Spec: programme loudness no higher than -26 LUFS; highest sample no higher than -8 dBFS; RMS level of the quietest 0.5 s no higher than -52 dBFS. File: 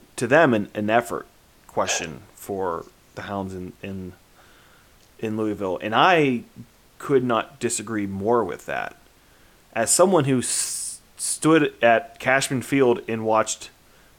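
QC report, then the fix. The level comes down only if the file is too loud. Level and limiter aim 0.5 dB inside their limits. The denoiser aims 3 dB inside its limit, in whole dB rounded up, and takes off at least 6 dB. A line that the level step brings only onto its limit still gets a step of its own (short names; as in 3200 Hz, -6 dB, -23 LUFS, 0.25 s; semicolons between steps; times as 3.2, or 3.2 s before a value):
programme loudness -22.0 LUFS: fail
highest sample -4.5 dBFS: fail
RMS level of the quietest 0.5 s -54 dBFS: OK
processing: gain -4.5 dB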